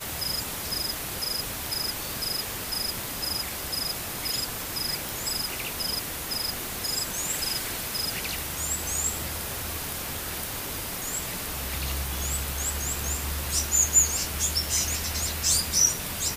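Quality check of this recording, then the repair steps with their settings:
surface crackle 23 per second −35 dBFS
0:05.09: click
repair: click removal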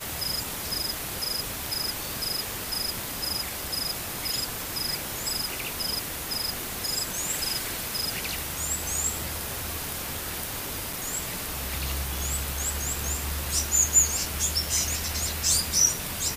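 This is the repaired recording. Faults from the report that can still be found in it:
none of them is left

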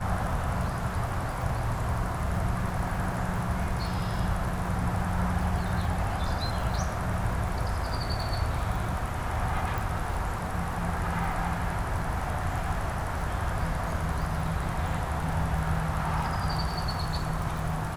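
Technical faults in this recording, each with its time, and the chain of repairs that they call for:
surface crackle 50 per second −34 dBFS
0:09.78: click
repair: click removal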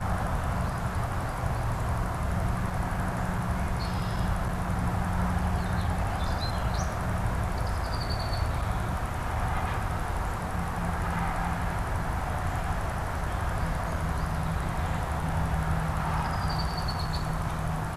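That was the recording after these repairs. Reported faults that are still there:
0:09.78: click

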